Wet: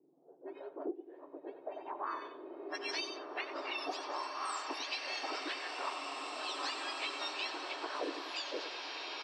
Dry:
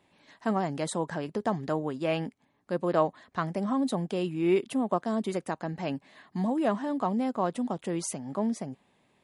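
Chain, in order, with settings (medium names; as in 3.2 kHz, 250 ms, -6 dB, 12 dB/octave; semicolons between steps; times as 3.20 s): spectrum inverted on a logarithmic axis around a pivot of 1.7 kHz; tilt shelf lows +4.5 dB, about 1.4 kHz; feedback delay 92 ms, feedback 29%, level -11 dB; level-controlled noise filter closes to 390 Hz, open at -30 dBFS; three-band isolator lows -18 dB, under 500 Hz, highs -15 dB, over 3.9 kHz; low-pass sweep 360 Hz -> 5.8 kHz, 1.54–2.59 s; compression 8:1, threshold -48 dBFS, peak gain reduction 22.5 dB; swelling reverb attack 2350 ms, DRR 0.5 dB; trim +10.5 dB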